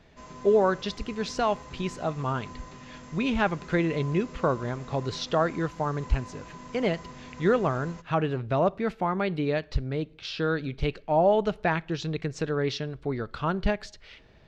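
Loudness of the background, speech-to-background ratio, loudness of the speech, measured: −45.0 LKFS, 17.0 dB, −28.0 LKFS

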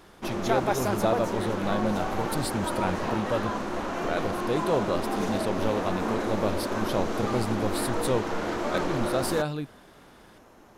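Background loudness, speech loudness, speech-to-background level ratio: −30.0 LKFS, −31.0 LKFS, −1.0 dB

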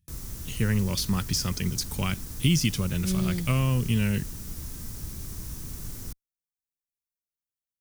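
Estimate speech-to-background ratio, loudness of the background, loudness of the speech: 11.0 dB, −38.0 LKFS, −27.0 LKFS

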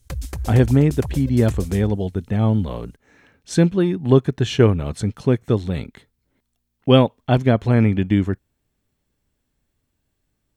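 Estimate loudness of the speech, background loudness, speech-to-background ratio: −19.0 LKFS, −32.0 LKFS, 13.0 dB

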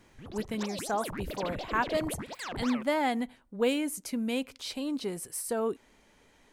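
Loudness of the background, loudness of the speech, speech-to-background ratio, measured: −39.5 LKFS, −32.5 LKFS, 7.0 dB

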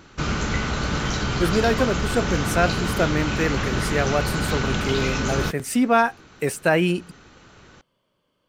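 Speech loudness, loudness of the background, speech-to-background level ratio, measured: −24.0 LKFS, −25.0 LKFS, 1.0 dB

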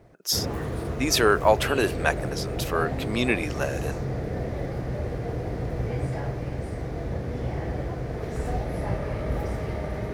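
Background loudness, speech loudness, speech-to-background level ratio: −31.0 LKFS, −25.0 LKFS, 6.0 dB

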